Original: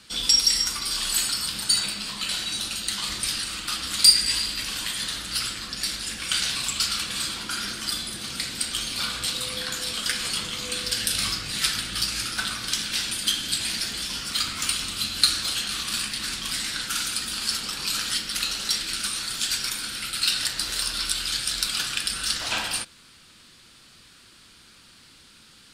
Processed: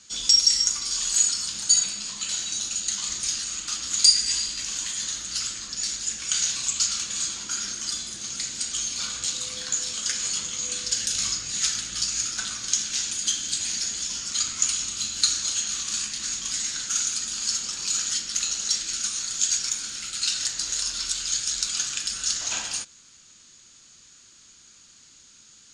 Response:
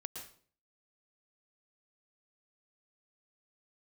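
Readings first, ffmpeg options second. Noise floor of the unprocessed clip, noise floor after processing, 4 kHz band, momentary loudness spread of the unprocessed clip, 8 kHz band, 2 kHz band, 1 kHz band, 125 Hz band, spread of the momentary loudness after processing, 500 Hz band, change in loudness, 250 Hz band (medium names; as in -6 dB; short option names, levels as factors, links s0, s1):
-52 dBFS, -53 dBFS, -2.5 dB, 7 LU, +5.0 dB, -6.5 dB, -7.0 dB, -7.5 dB, 8 LU, -7.5 dB, +0.5 dB, -7.5 dB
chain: -af "lowpass=f=6700:t=q:w=15,volume=0.422"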